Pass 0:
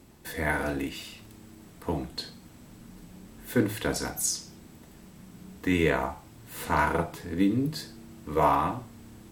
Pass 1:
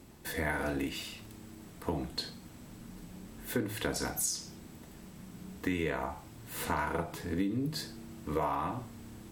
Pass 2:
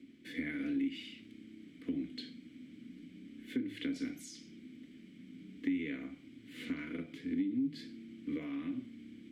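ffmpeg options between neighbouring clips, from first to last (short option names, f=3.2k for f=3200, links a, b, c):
-af "acompressor=threshold=-29dB:ratio=6"
-filter_complex "[0:a]asplit=3[a][b][c];[a]bandpass=f=270:t=q:w=8,volume=0dB[d];[b]bandpass=f=2.29k:t=q:w=8,volume=-6dB[e];[c]bandpass=f=3.01k:t=q:w=8,volume=-9dB[f];[d][e][f]amix=inputs=3:normalize=0,acrossover=split=140[g][h];[h]acompressor=threshold=-41dB:ratio=3[i];[g][i]amix=inputs=2:normalize=0,volume=8dB"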